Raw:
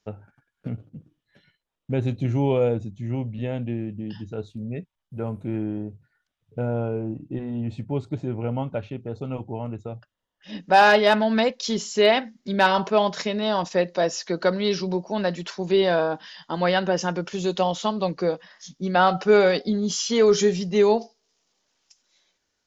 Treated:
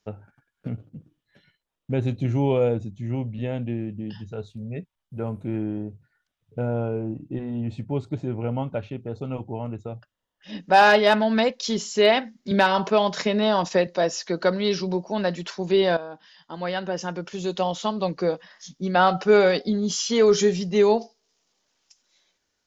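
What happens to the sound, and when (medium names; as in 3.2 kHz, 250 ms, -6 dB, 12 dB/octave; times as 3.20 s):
4.10–4.76 s: peaking EQ 290 Hz -11.5 dB 0.45 oct
12.51–13.87 s: three bands compressed up and down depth 70%
15.97–18.24 s: fade in, from -14 dB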